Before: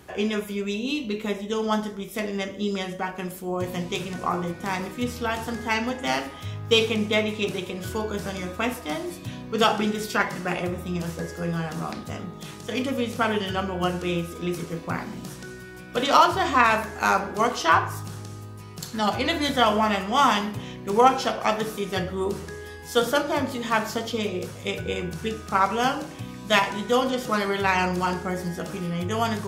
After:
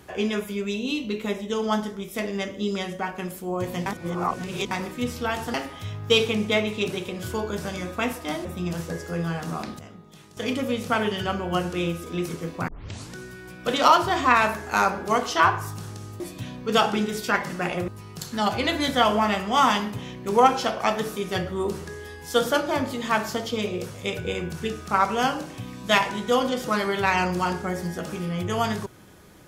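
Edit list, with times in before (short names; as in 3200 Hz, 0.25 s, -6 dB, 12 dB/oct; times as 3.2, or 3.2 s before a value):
3.86–4.71 reverse
5.54–6.15 cut
9.06–10.74 move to 18.49
12.08–12.66 gain -10.5 dB
14.97 tape start 0.45 s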